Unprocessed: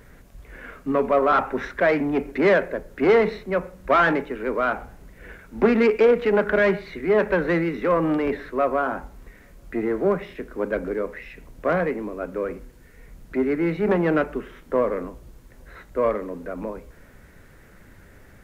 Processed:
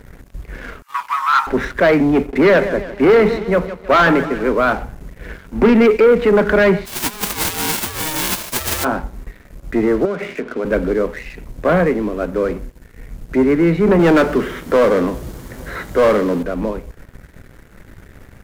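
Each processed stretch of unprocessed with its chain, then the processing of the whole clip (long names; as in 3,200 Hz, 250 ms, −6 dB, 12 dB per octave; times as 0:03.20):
0:00.82–0:01.47: Butterworth high-pass 880 Hz 96 dB per octave + high-shelf EQ 4,500 Hz +6.5 dB + double-tracking delay 14 ms −11.5 dB
0:02.17–0:04.52: noise gate −36 dBFS, range −10 dB + mains-hum notches 50/100/150 Hz + repeating echo 157 ms, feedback 48%, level −14.5 dB
0:06.85–0:08.83: spectral envelope flattened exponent 0.1 + compressor whose output falls as the input rises −25 dBFS, ratio −0.5 + ring modulation 620 Hz
0:10.05–0:10.65: downward compressor 5 to 1, threshold −32 dBFS + loudspeaker in its box 170–3,500 Hz, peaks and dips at 230 Hz +7 dB, 440 Hz +6 dB, 660 Hz +7 dB, 1,400 Hz +10 dB, 2,300 Hz +9 dB
0:13.99–0:16.43: high-pass filter 180 Hz 6 dB per octave + notch filter 2,600 Hz, Q 14 + power curve on the samples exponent 0.7
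whole clip: low-shelf EQ 260 Hz +6.5 dB; leveller curve on the samples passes 2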